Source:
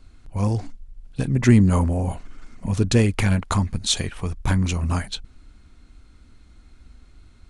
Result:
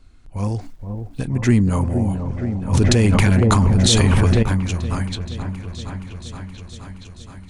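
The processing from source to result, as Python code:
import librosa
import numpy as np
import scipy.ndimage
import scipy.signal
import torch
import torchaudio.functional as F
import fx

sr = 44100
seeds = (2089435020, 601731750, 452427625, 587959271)

y = fx.quant_dither(x, sr, seeds[0], bits=10, dither='none', at=(0.61, 1.2))
y = fx.echo_opening(y, sr, ms=472, hz=750, octaves=1, feedback_pct=70, wet_db=-6)
y = fx.env_flatten(y, sr, amount_pct=100, at=(2.73, 4.43))
y = y * 10.0 ** (-1.0 / 20.0)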